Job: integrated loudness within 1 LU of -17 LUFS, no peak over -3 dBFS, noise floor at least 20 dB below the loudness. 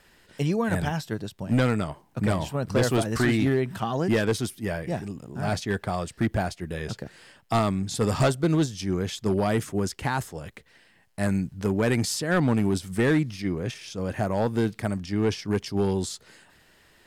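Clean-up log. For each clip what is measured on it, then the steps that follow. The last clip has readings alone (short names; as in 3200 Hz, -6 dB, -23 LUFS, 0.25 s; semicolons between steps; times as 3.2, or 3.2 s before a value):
clipped 0.9%; flat tops at -16.0 dBFS; loudness -26.5 LUFS; peak -16.0 dBFS; loudness target -17.0 LUFS
-> clip repair -16 dBFS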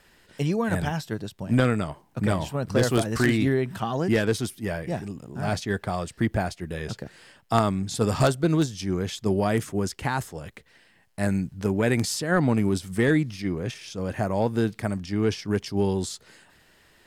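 clipped 0.0%; loudness -26.0 LUFS; peak -7.0 dBFS; loudness target -17.0 LUFS
-> gain +9 dB; limiter -3 dBFS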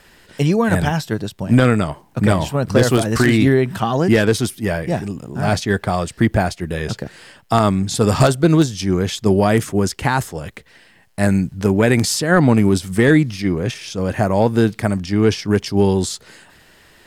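loudness -17.5 LUFS; peak -3.0 dBFS; noise floor -51 dBFS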